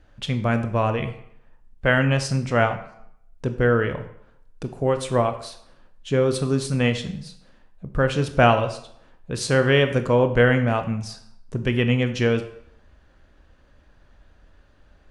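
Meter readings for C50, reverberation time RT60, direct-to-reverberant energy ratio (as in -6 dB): 11.5 dB, 0.70 s, 8.0 dB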